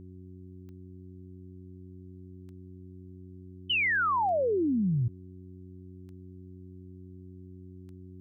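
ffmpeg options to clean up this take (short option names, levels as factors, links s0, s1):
-af "adeclick=t=4,bandreject=f=92.1:t=h:w=4,bandreject=f=184.2:t=h:w=4,bandreject=f=276.3:t=h:w=4,bandreject=f=368.4:t=h:w=4,agate=range=0.0891:threshold=0.01"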